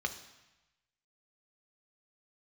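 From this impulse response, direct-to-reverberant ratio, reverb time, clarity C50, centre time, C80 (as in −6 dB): 5.5 dB, 1.0 s, 11.5 dB, 11 ms, 14.0 dB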